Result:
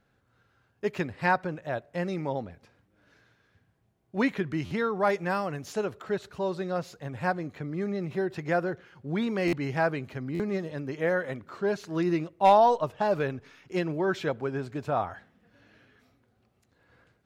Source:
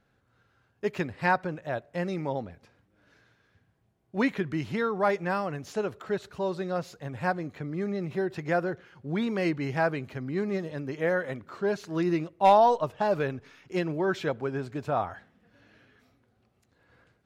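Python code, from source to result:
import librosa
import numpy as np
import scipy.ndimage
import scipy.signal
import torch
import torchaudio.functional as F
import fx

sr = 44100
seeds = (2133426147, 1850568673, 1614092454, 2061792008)

y = fx.high_shelf(x, sr, hz=5800.0, db=5.5, at=(5.07, 5.85))
y = fx.buffer_glitch(y, sr, at_s=(4.65, 9.47, 10.34), block=512, repeats=4)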